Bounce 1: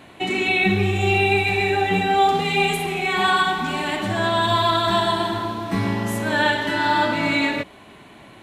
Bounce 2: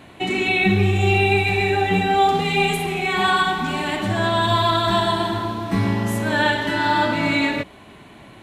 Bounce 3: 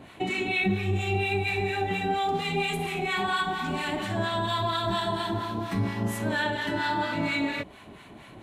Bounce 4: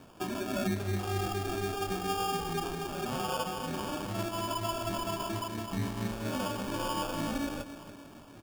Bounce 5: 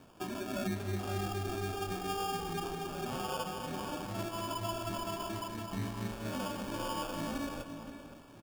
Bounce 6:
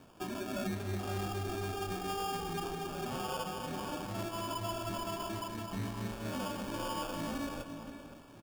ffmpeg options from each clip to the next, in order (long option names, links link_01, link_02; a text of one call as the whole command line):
ffmpeg -i in.wav -af "lowshelf=frequency=170:gain=5.5" out.wav
ffmpeg -i in.wav -filter_complex "[0:a]acompressor=threshold=-25dB:ratio=2,acrossover=split=920[link_01][link_02];[link_01]aeval=exprs='val(0)*(1-0.7/2+0.7/2*cos(2*PI*4.3*n/s))':channel_layout=same[link_03];[link_02]aeval=exprs='val(0)*(1-0.7/2-0.7/2*cos(2*PI*4.3*n/s))':channel_layout=same[link_04];[link_03][link_04]amix=inputs=2:normalize=0" out.wav
ffmpeg -i in.wav -filter_complex "[0:a]asplit=2[link_01][link_02];[link_02]adelay=287,lowpass=frequency=1600:poles=1,volume=-11dB,asplit=2[link_03][link_04];[link_04]adelay=287,lowpass=frequency=1600:poles=1,volume=0.54,asplit=2[link_05][link_06];[link_06]adelay=287,lowpass=frequency=1600:poles=1,volume=0.54,asplit=2[link_07][link_08];[link_08]adelay=287,lowpass=frequency=1600:poles=1,volume=0.54,asplit=2[link_09][link_10];[link_10]adelay=287,lowpass=frequency=1600:poles=1,volume=0.54,asplit=2[link_11][link_12];[link_12]adelay=287,lowpass=frequency=1600:poles=1,volume=0.54[link_13];[link_01][link_03][link_05][link_07][link_09][link_11][link_13]amix=inputs=7:normalize=0,acrusher=samples=22:mix=1:aa=0.000001,volume=-6dB" out.wav
ffmpeg -i in.wav -filter_complex "[0:a]asplit=2[link_01][link_02];[link_02]adelay=519,volume=-10dB,highshelf=frequency=4000:gain=-11.7[link_03];[link_01][link_03]amix=inputs=2:normalize=0,volume=-4dB" out.wav
ffmpeg -i in.wav -af "asoftclip=type=hard:threshold=-31.5dB" out.wav